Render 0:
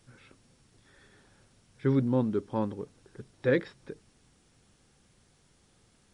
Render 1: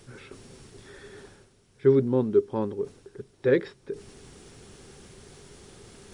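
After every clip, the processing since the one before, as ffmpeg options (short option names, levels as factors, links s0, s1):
-af "equalizer=f=400:w=5.3:g=12.5,areverse,acompressor=mode=upward:threshold=0.0178:ratio=2.5,areverse"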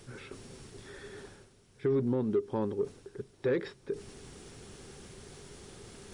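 -filter_complex "[0:a]asplit=2[s0][s1];[s1]asoftclip=type=tanh:threshold=0.0891,volume=0.668[s2];[s0][s2]amix=inputs=2:normalize=0,alimiter=limit=0.15:level=0:latency=1:release=102,volume=0.562"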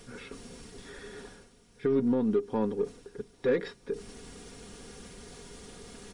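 -af "aeval=exprs='0.0891*(cos(1*acos(clip(val(0)/0.0891,-1,1)))-cos(1*PI/2))+0.00112*(cos(8*acos(clip(val(0)/0.0891,-1,1)))-cos(8*PI/2))':c=same,aecho=1:1:4.2:0.56,volume=1.19"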